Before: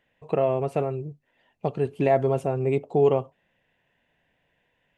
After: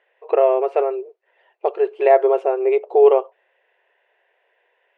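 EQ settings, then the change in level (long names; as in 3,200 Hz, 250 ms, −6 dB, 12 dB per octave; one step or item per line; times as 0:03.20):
linear-phase brick-wall high-pass 350 Hz
low-pass filter 2,400 Hz 12 dB per octave
+8.0 dB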